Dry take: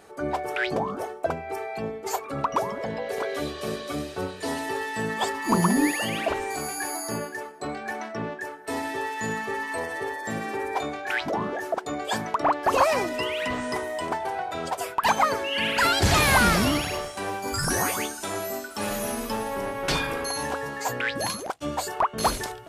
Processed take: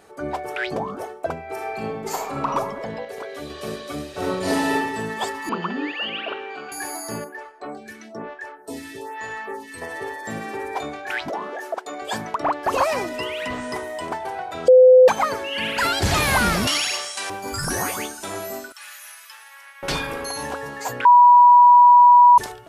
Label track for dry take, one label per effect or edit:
1.460000	2.460000	reverb throw, RT60 1 s, DRR -1 dB
3.050000	3.500000	gain -4.5 dB
4.110000	4.730000	reverb throw, RT60 0.96 s, DRR -7 dB
5.490000	6.720000	cabinet simulation 320–3400 Hz, peaks and dips at 320 Hz -3 dB, 650 Hz -7 dB, 940 Hz -6 dB, 1.4 kHz +5 dB, 2 kHz -8 dB, 2.9 kHz +9 dB
7.240000	9.820000	lamp-driven phase shifter 1.1 Hz
11.300000	12.020000	high-pass 390 Hz
14.680000	15.080000	bleep 510 Hz -6.5 dBFS
16.670000	17.300000	frequency weighting ITU-R 468
18.720000	19.830000	ladder high-pass 1.3 kHz, resonance 30%
21.050000	22.380000	bleep 973 Hz -7 dBFS

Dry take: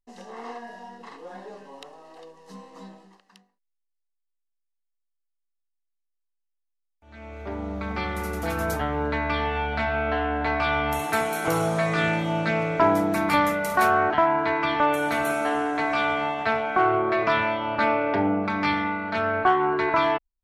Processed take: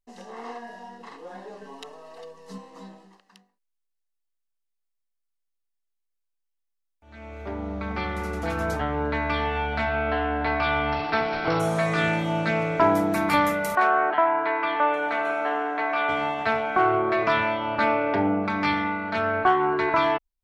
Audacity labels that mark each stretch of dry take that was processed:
1.610000	2.580000	comb 4.5 ms, depth 91%
7.510000	9.150000	distance through air 56 m
9.890000	11.600000	careless resampling rate divided by 4×, down none, up filtered
13.750000	16.090000	band-pass 390–2800 Hz

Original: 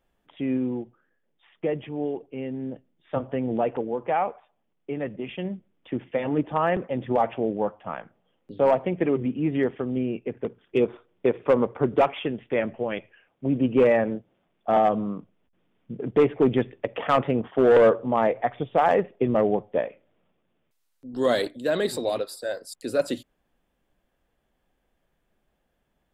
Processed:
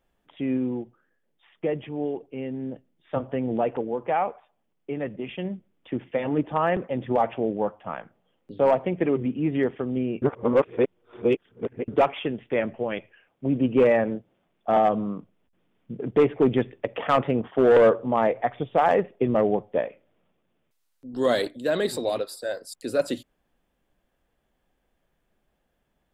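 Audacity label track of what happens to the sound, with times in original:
10.220000	11.880000	reverse

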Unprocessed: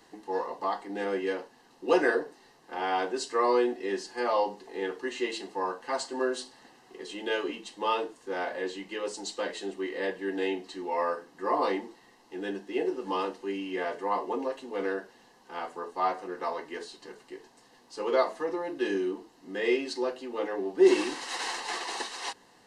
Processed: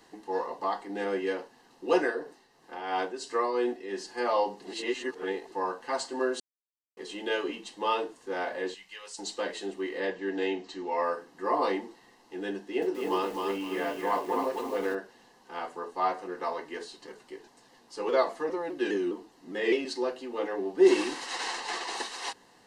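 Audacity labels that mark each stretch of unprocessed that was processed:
1.880000	4.080000	tremolo triangle 2.9 Hz, depth 60%
4.620000	5.520000	reverse
6.400000	6.970000	mute
8.740000	9.190000	amplifier tone stack bass-middle-treble 10-0-10
10.000000	11.030000	steep low-pass 7.7 kHz 48 dB/octave
12.560000	14.950000	bit-crushed delay 259 ms, feedback 35%, word length 8-bit, level -3 dB
17.070000	19.850000	vibrato with a chosen wave saw down 4.9 Hz, depth 100 cents
21.260000	21.950000	low-pass 9.2 kHz

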